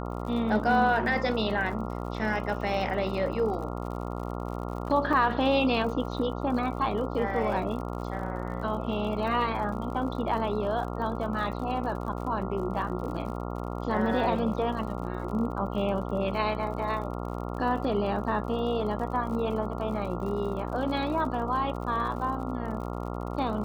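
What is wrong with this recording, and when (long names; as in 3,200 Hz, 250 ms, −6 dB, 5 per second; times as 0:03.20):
mains buzz 60 Hz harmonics 23 −34 dBFS
surface crackle 63 per second −38 dBFS
0:05.13: drop-out 4.9 ms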